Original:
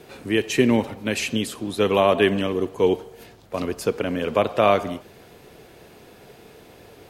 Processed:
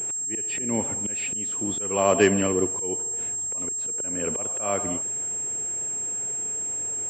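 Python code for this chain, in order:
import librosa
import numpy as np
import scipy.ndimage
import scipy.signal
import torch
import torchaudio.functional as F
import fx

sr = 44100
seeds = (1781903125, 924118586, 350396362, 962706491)

y = fx.freq_compress(x, sr, knee_hz=2700.0, ratio=1.5)
y = fx.auto_swell(y, sr, attack_ms=397.0)
y = fx.pwm(y, sr, carrier_hz=7500.0)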